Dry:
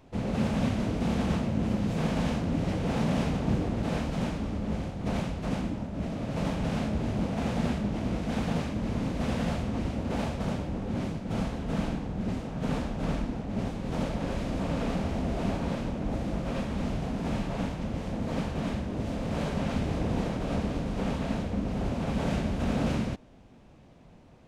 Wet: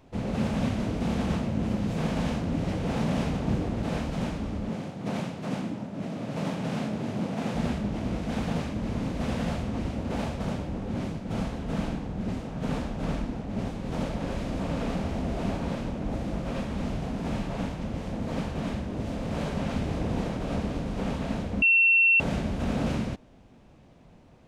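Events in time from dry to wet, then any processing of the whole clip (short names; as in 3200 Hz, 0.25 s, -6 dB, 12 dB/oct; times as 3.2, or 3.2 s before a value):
4.69–7.55 HPF 120 Hz 24 dB/oct
21.62–22.2 bleep 2710 Hz -16.5 dBFS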